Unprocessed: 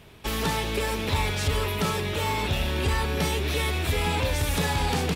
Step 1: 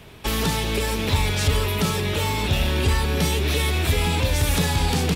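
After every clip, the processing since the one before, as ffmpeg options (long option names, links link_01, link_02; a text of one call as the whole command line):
ffmpeg -i in.wav -filter_complex "[0:a]acrossover=split=320|3000[link_01][link_02][link_03];[link_02]acompressor=threshold=-32dB:ratio=6[link_04];[link_01][link_04][link_03]amix=inputs=3:normalize=0,volume=5.5dB" out.wav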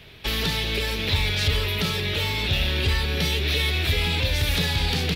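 ffmpeg -i in.wav -af "equalizer=frequency=250:width_type=o:width=1:gain=-4,equalizer=frequency=1000:width_type=o:width=1:gain=-6,equalizer=frequency=2000:width_type=o:width=1:gain=4,equalizer=frequency=4000:width_type=o:width=1:gain=8,equalizer=frequency=8000:width_type=o:width=1:gain=-9,volume=-2.5dB" out.wav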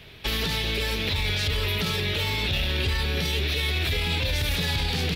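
ffmpeg -i in.wav -af "alimiter=limit=-17dB:level=0:latency=1:release=22" out.wav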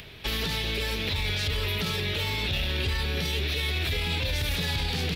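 ffmpeg -i in.wav -af "acompressor=mode=upward:threshold=-37dB:ratio=2.5,volume=-2.5dB" out.wav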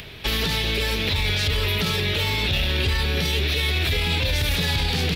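ffmpeg -i in.wav -af "acontrast=45" out.wav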